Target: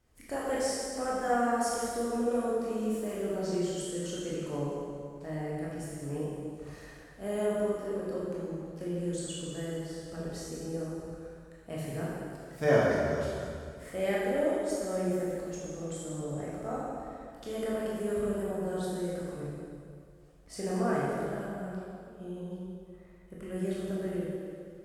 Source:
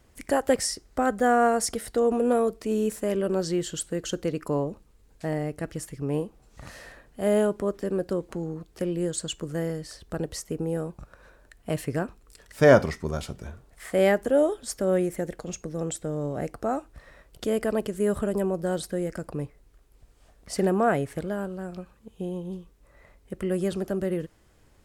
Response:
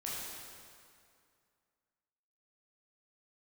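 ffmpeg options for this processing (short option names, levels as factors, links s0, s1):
-filter_complex "[1:a]atrim=start_sample=2205[s0];[0:a][s0]afir=irnorm=-1:irlink=0,volume=0.398"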